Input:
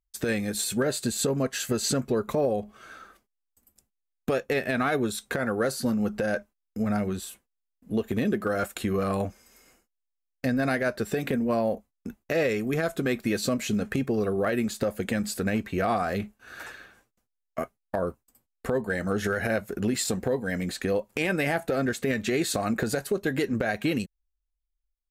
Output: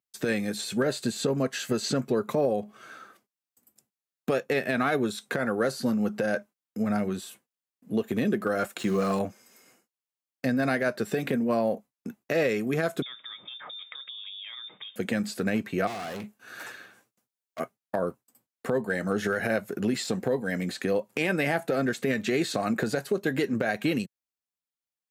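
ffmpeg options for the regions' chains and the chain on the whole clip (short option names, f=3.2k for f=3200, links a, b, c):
-filter_complex "[0:a]asettb=1/sr,asplit=3[a][b][c];[a]atrim=end=8.794[d];[b]atrim=start=8.79:end=9.19,asetpts=PTS-STARTPTS,afade=t=in:d=0.004:c=qsin,afade=t=out:st=0.396:d=0.004:c=qsin,lowpass=f=7.1k:t=q:w=2.5,aecho=1:1:5.8:0.35,atrim=end_sample=17640,aeval=exprs='val(0)*gte(abs(val(0)),0.0119)':c=same[e];[c]atrim=start=9.186[f];[d][e]acrossfade=d=0.004:c1=hsin:c2=qsin[g];[g][f]acrossfade=d=0.004:c1=qsin:c2=hsin,asettb=1/sr,asplit=3[h][i][j];[h]atrim=end=13.024[k];[i]atrim=start=13.02:end=14.96,asetpts=PTS-STARTPTS,afade=t=in:d=0.004:c=qsin,afade=t=out:st=1.936:d=0.004:c=qsin,acompressor=threshold=-35dB:ratio=12:attack=3.2:release=140:knee=1:detection=peak,lowpass=f=3.2k:t=q:w=0.5098,lowpass=f=3.2k:t=q:w=0.6013,lowpass=f=3.2k:t=q:w=0.9,lowpass=f=3.2k:t=q:w=2.563,afreqshift=-3800,tiltshelf=f=1.4k:g=3.5[l];[j]atrim=start=14.956[m];[k][l]acrossfade=d=0.004:c1=hsin:c2=qsin[n];[n][m]acrossfade=d=0.004:c1=qsin:c2=hsin,asettb=1/sr,asplit=3[o][p][q];[o]atrim=end=15.874[r];[p]atrim=start=15.87:end=17.6,asetpts=PTS-STARTPTS,afade=t=in:d=0.004:c=qsin,afade=t=out:st=1.726:d=0.004:c=qsin,asoftclip=type=hard:threshold=-34dB,highshelf=f=4.9k:g=4[s];[q]atrim=start=17.596[t];[r][s]acrossfade=d=0.004:c1=hsin:c2=qsin[u];[u][t]acrossfade=d=0.004:c1=qsin:c2=hsin,acrossover=split=5800[v][w];[w]acompressor=threshold=-43dB:ratio=4:attack=1:release=60[x];[v][x]amix=inputs=2:normalize=0,highpass=f=120:w=0.5412,highpass=f=120:w=1.3066"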